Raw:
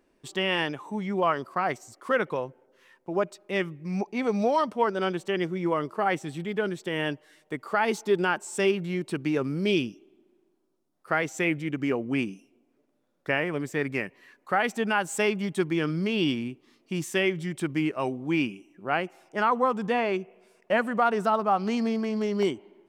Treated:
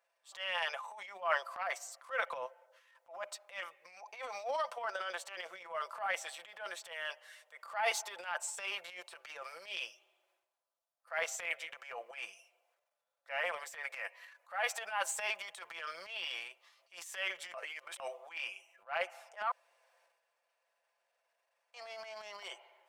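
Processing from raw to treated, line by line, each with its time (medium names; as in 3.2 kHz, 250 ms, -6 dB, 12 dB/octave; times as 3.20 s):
17.54–18.00 s: reverse
19.51–21.74 s: room tone
whole clip: elliptic high-pass 580 Hz, stop band 50 dB; comb 5.9 ms, depth 55%; transient shaper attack -11 dB, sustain +10 dB; trim -8 dB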